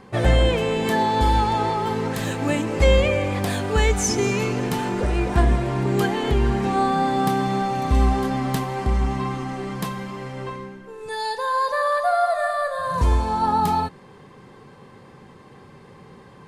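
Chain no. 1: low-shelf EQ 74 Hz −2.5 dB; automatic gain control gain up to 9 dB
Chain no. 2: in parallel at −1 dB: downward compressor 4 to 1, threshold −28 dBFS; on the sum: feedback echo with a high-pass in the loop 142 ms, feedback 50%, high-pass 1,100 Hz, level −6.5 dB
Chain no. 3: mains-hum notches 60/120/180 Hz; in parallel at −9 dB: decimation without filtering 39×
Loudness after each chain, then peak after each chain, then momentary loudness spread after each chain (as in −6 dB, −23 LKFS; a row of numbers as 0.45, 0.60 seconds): −16.0, −19.5, −21.5 LKFS; −1.0, −2.5, −4.0 dBFS; 8, 8, 9 LU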